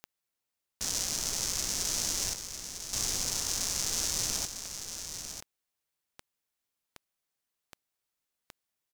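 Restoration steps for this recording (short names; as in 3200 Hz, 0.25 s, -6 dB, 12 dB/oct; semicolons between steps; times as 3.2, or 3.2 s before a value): de-click; inverse comb 0.951 s -8.5 dB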